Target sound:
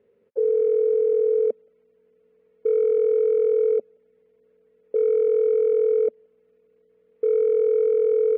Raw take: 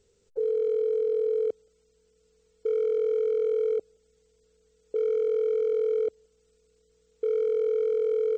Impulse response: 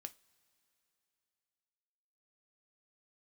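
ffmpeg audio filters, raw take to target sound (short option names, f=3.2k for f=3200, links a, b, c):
-af "highpass=210,equalizer=f=230:t=q:w=4:g=6,equalizer=f=340:t=q:w=4:g=-4,equalizer=f=570:t=q:w=4:g=5,equalizer=f=820:t=q:w=4:g=-4,equalizer=f=1.4k:t=q:w=4:g=-6,lowpass=f=2.1k:w=0.5412,lowpass=f=2.1k:w=1.3066,volume=5.5dB"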